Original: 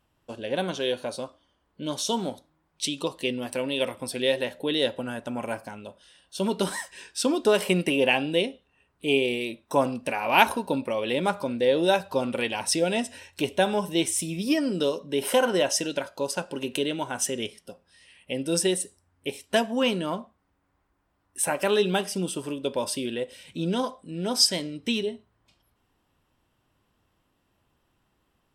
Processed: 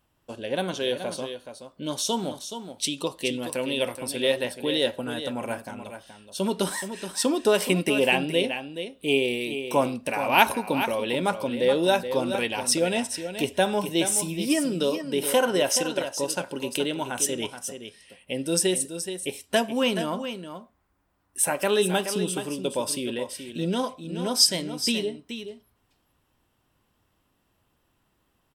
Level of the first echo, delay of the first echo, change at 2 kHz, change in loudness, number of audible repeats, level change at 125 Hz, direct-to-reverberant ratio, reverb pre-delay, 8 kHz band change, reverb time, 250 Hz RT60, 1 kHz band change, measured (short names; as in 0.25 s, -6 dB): -9.5 dB, 0.425 s, +0.5 dB, +1.0 dB, 1, +0.5 dB, none, none, +3.5 dB, none, none, +0.5 dB